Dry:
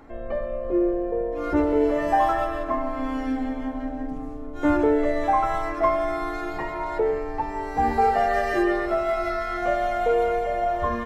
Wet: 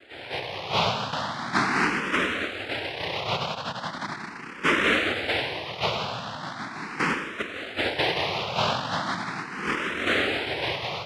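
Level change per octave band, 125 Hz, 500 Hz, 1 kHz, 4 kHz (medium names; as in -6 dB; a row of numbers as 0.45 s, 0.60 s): +3.0 dB, -8.0 dB, -5.5 dB, +17.5 dB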